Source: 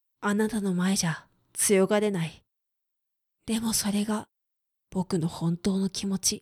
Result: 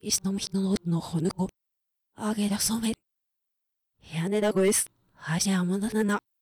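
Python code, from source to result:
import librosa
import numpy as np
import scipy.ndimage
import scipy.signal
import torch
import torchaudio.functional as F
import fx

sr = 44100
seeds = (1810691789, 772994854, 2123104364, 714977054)

y = np.flip(x).copy()
y = np.clip(10.0 ** (17.0 / 20.0) * y, -1.0, 1.0) / 10.0 ** (17.0 / 20.0)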